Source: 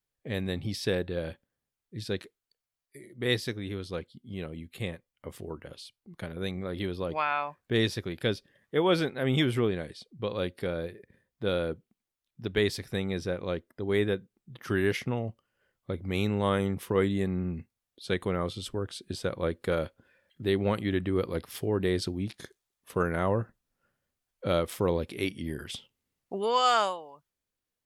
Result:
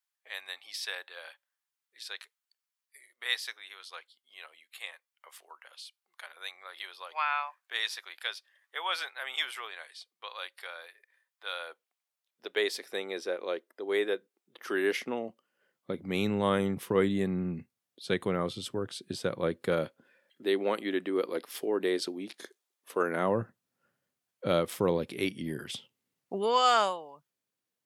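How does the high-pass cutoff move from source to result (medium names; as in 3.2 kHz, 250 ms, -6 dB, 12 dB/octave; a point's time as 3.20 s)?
high-pass 24 dB/octave
11.48 s 880 Hz
12.82 s 360 Hz
14.55 s 360 Hz
16.34 s 120 Hz
19.77 s 120 Hz
20.43 s 280 Hz
23.00 s 280 Hz
23.42 s 120 Hz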